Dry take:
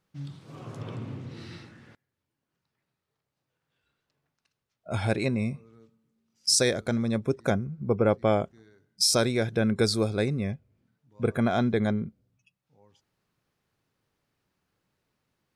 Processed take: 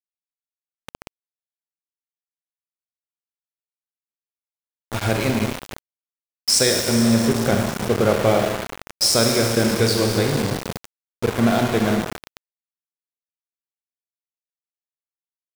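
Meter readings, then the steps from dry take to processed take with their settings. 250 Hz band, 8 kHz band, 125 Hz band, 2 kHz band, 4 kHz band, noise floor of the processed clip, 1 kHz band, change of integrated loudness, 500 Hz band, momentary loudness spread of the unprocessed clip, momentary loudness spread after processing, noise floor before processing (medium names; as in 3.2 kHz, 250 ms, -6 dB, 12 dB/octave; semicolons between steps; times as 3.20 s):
+7.0 dB, +7.5 dB, +5.5 dB, +8.0 dB, +7.5 dB, under -85 dBFS, +8.0 dB, +7.0 dB, +6.5 dB, 19 LU, 13 LU, -84 dBFS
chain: Schroeder reverb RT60 2.8 s, combs from 27 ms, DRR 1 dB; small samples zeroed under -25.5 dBFS; trim +4.5 dB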